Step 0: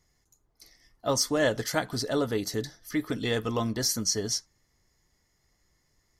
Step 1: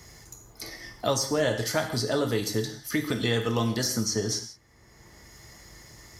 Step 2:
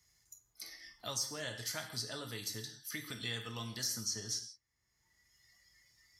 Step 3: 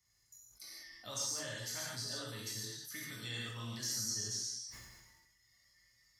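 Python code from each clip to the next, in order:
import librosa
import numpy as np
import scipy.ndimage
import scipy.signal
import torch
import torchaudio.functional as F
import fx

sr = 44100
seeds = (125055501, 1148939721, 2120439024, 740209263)

y1 = scipy.signal.sosfilt(scipy.signal.butter(2, 42.0, 'highpass', fs=sr, output='sos'), x)
y1 = fx.rev_gated(y1, sr, seeds[0], gate_ms=200, shape='falling', drr_db=4.5)
y1 = fx.band_squash(y1, sr, depth_pct=70)
y2 = fx.noise_reduce_blind(y1, sr, reduce_db=12)
y2 = fx.tone_stack(y2, sr, knobs='5-5-5')
y2 = F.gain(torch.from_numpy(y2), -1.0).numpy()
y3 = fx.dynamic_eq(y2, sr, hz=7000.0, q=2.1, threshold_db=-54.0, ratio=4.0, max_db=5)
y3 = fx.rev_gated(y3, sr, seeds[1], gate_ms=180, shape='flat', drr_db=-4.0)
y3 = fx.sustainer(y3, sr, db_per_s=37.0)
y3 = F.gain(torch.from_numpy(y3), -8.0).numpy()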